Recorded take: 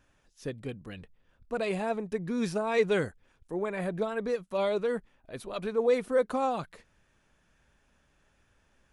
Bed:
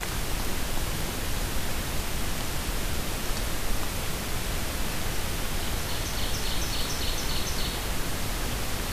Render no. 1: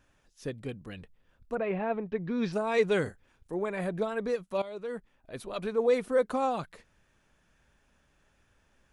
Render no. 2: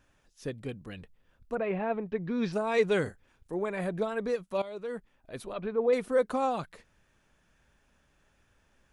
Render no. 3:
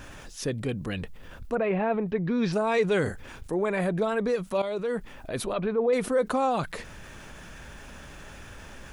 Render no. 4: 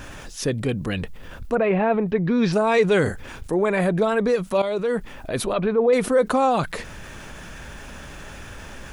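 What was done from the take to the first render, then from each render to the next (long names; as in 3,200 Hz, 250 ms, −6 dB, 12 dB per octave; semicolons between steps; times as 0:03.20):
0:01.54–0:02.52: low-pass filter 2,000 Hz → 5,000 Hz 24 dB per octave; 0:03.02–0:03.55: double-tracking delay 38 ms −10 dB; 0:04.62–0:05.36: fade in, from −17 dB
0:05.53–0:05.93: high-frequency loss of the air 340 metres
envelope flattener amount 50%
level +6 dB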